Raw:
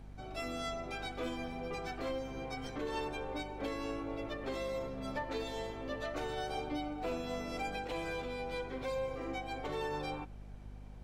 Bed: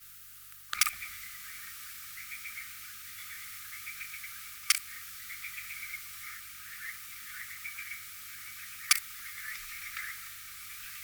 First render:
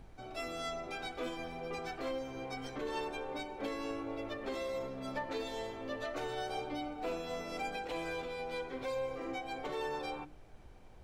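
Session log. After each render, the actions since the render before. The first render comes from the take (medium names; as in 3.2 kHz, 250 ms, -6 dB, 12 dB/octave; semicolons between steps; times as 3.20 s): hum notches 50/100/150/200/250/300 Hz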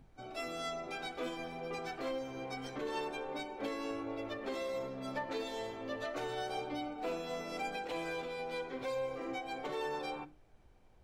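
noise print and reduce 8 dB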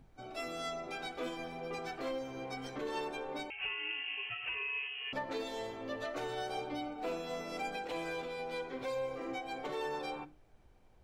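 3.50–5.13 s: frequency inversion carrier 3.1 kHz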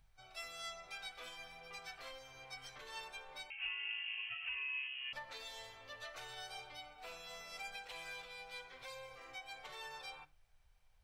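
amplifier tone stack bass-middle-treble 10-0-10; band-stop 6.9 kHz, Q 17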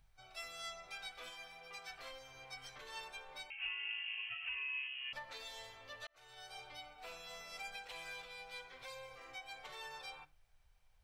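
1.30–1.90 s: bass shelf 210 Hz -8 dB; 6.07–6.71 s: fade in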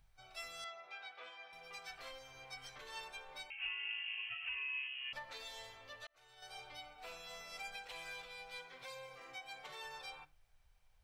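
0.64–1.53 s: band-pass 400–2800 Hz; 5.72–6.42 s: fade out linear, to -6.5 dB; 8.58–9.85 s: resonant low shelf 100 Hz -11 dB, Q 1.5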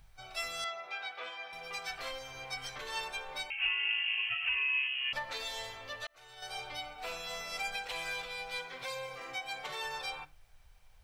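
trim +10 dB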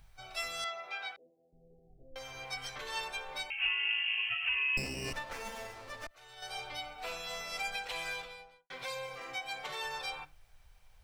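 1.16–2.16 s: Gaussian low-pass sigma 24 samples; 4.77–6.11 s: sliding maximum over 9 samples; 8.06–8.70 s: studio fade out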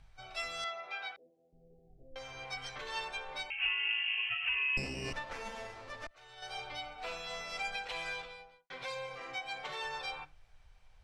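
distance through air 66 m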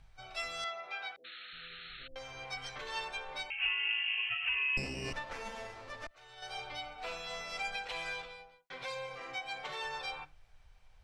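1.24–2.08 s: painted sound noise 1.2–4.3 kHz -49 dBFS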